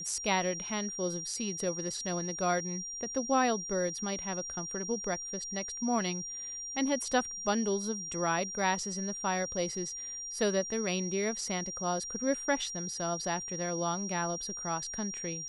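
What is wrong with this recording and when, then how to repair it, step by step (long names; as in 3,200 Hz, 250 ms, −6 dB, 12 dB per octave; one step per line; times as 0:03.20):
whistle 5,700 Hz −38 dBFS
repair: notch filter 5,700 Hz, Q 30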